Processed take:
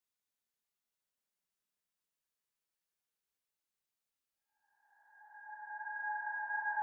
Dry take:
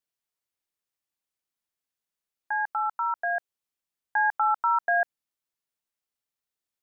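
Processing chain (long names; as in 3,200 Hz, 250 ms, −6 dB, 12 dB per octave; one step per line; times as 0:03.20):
reversed piece by piece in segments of 40 ms
volume swells 239 ms
extreme stretch with random phases 11×, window 0.25 s, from 0:01.97
level −2 dB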